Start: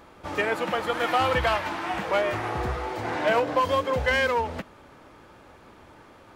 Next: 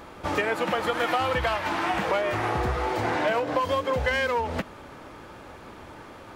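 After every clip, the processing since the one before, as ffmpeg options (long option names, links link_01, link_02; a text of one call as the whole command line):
ffmpeg -i in.wav -af "acompressor=threshold=-29dB:ratio=5,volume=6.5dB" out.wav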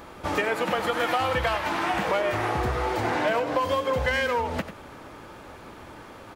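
ffmpeg -i in.wav -af "highshelf=frequency=9800:gain=4.5,aecho=1:1:93:0.266" out.wav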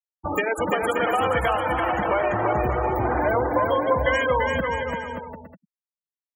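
ffmpeg -i in.wav -af "aexciter=amount=6.9:drive=3.4:freq=5700,afftfilt=real='re*gte(hypot(re,im),0.0891)':imag='im*gte(hypot(re,im),0.0891)':win_size=1024:overlap=0.75,aecho=1:1:340|578|744.6|861.2|942.9:0.631|0.398|0.251|0.158|0.1,volume=2dB" out.wav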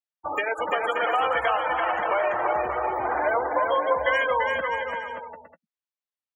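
ffmpeg -i in.wav -filter_complex "[0:a]acrossover=split=450 5100:gain=0.1 1 0.0794[link_01][link_02][link_03];[link_01][link_02][link_03]amix=inputs=3:normalize=0,asplit=2[link_04][link_05];[link_05]adelay=13,volume=-13dB[link_06];[link_04][link_06]amix=inputs=2:normalize=0" out.wav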